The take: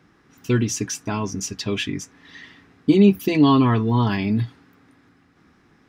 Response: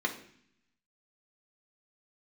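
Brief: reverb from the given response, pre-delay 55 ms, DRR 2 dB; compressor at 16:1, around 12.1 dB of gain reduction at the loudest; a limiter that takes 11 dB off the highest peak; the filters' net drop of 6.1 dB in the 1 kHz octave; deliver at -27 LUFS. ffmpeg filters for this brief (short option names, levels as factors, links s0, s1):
-filter_complex "[0:a]equalizer=f=1000:t=o:g=-7,acompressor=threshold=0.0891:ratio=16,alimiter=limit=0.0668:level=0:latency=1,asplit=2[s0][s1];[1:a]atrim=start_sample=2205,adelay=55[s2];[s1][s2]afir=irnorm=-1:irlink=0,volume=0.335[s3];[s0][s3]amix=inputs=2:normalize=0,volume=1.58"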